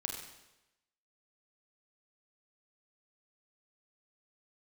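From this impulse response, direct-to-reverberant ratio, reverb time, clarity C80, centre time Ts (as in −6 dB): 1.5 dB, 0.95 s, 5.5 dB, 40 ms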